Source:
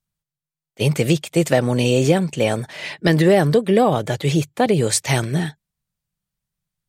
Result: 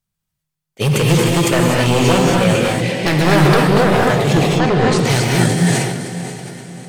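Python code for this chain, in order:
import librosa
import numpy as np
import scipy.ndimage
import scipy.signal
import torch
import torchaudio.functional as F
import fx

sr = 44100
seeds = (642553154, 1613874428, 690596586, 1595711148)

y = fx.highpass(x, sr, hz=74.0, slope=24, at=(1.29, 2.2))
y = fx.echo_diffused(y, sr, ms=500, feedback_pct=46, wet_db=-11)
y = 10.0 ** (-12.5 / 20.0) * (np.abs((y / 10.0 ** (-12.5 / 20.0) + 3.0) % 4.0 - 2.0) - 1.0)
y = fx.lowpass(y, sr, hz=4500.0, slope=12, at=(4.33, 4.99))
y = fx.rev_gated(y, sr, seeds[0], gate_ms=280, shape='rising', drr_db=-2.0)
y = fx.sustainer(y, sr, db_per_s=37.0)
y = y * librosa.db_to_amplitude(2.0)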